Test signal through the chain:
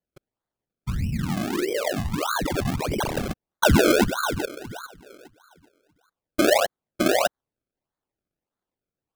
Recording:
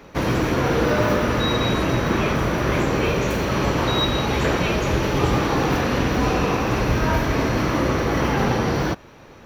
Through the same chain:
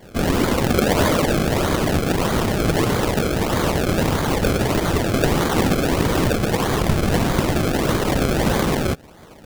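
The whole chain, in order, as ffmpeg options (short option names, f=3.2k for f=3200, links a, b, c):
-af "afftfilt=real='hypot(re,im)*cos(2*PI*random(0))':imag='hypot(re,im)*sin(2*PI*random(1))':win_size=512:overlap=0.75,acrusher=samples=32:mix=1:aa=0.000001:lfo=1:lforange=32:lforate=1.6,volume=7.5dB"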